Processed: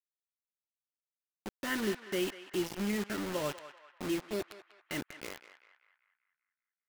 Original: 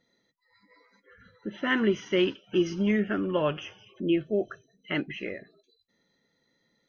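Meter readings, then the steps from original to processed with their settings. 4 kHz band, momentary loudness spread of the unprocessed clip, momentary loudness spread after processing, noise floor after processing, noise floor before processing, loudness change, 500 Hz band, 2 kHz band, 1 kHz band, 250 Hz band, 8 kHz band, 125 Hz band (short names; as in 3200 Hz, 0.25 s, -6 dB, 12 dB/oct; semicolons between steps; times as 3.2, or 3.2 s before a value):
-5.5 dB, 15 LU, 15 LU, under -85 dBFS, -74 dBFS, -8.0 dB, -9.0 dB, -7.5 dB, -6.0 dB, -9.0 dB, n/a, -9.0 dB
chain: bit-crush 5-bit; narrowing echo 0.194 s, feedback 53%, band-pass 1600 Hz, level -10.5 dB; gain -9 dB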